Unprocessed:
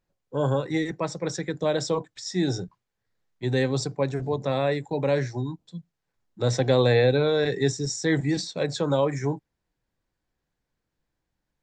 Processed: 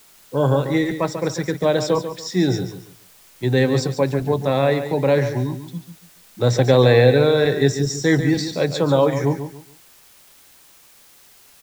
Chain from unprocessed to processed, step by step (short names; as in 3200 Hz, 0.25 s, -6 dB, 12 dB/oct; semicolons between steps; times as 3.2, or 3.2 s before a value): high shelf 7400 Hz -9 dB; in parallel at -5 dB: requantised 8-bit, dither triangular; on the sum: feedback echo 0.142 s, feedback 28%, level -10 dB; gain +2.5 dB